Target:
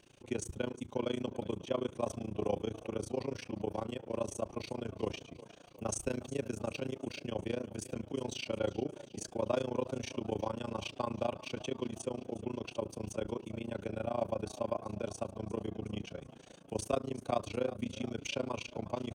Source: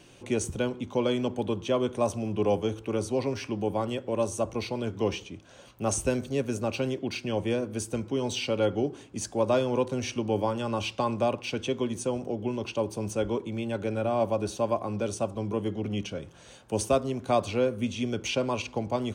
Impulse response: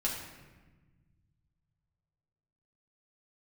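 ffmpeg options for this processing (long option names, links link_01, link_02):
-filter_complex "[0:a]asplit=7[link_01][link_02][link_03][link_04][link_05][link_06][link_07];[link_02]adelay=365,afreqshift=34,volume=-17dB[link_08];[link_03]adelay=730,afreqshift=68,volume=-21.6dB[link_09];[link_04]adelay=1095,afreqshift=102,volume=-26.2dB[link_10];[link_05]adelay=1460,afreqshift=136,volume=-30.7dB[link_11];[link_06]adelay=1825,afreqshift=170,volume=-35.3dB[link_12];[link_07]adelay=2190,afreqshift=204,volume=-39.9dB[link_13];[link_01][link_08][link_09][link_10][link_11][link_12][link_13]amix=inputs=7:normalize=0,tremolo=f=28:d=0.974,volume=-5dB"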